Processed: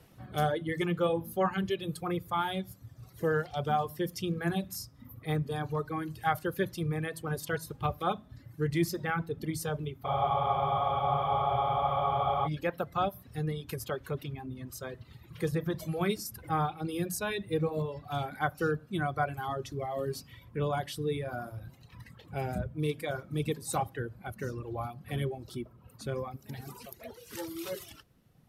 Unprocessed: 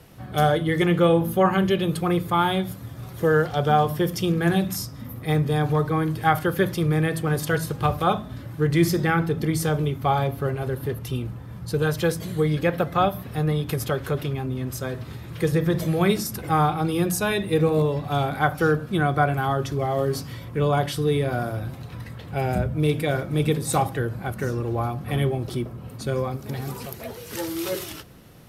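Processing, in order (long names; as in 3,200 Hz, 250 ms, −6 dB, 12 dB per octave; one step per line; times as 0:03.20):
reverb reduction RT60 1.8 s
frozen spectrum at 0:10.08, 2.38 s
level −8.5 dB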